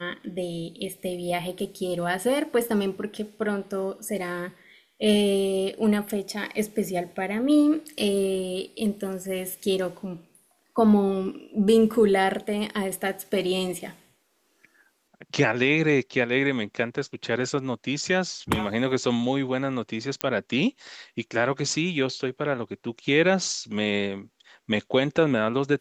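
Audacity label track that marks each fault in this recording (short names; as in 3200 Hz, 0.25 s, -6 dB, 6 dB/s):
20.210000	20.210000	pop -9 dBFS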